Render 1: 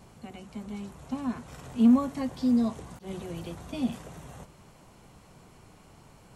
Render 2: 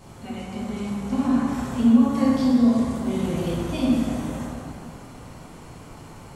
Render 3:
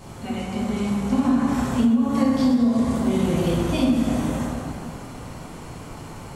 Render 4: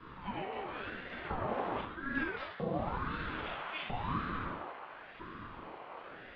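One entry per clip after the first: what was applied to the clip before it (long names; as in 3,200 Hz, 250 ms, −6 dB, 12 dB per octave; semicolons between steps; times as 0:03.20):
downward compressor, threshold −27 dBFS, peak gain reduction 11 dB; dense smooth reverb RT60 2.6 s, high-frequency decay 0.55×, DRR −6.5 dB; level +4 dB
downward compressor 10 to 1, threshold −20 dBFS, peak gain reduction 10.5 dB; level +5 dB
auto-filter high-pass saw up 0.77 Hz 460–1,700 Hz; single-sideband voice off tune −160 Hz 400–3,400 Hz; ring modulator whose carrier an LFO sweeps 430 Hz, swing 65%, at 0.94 Hz; level −5.5 dB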